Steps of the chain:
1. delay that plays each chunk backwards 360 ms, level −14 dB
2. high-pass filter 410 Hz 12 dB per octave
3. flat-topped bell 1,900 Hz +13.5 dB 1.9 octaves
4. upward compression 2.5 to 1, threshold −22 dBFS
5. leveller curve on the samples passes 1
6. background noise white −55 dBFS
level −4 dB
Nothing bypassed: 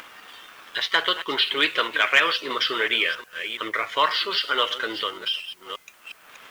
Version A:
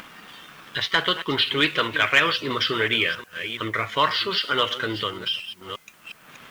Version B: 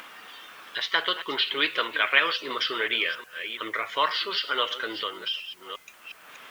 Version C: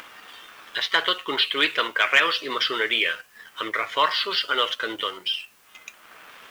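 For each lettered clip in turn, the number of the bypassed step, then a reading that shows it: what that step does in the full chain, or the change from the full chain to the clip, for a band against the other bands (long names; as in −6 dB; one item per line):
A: 2, 250 Hz band +6.5 dB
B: 5, change in crest factor +3.5 dB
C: 1, change in momentary loudness spread −6 LU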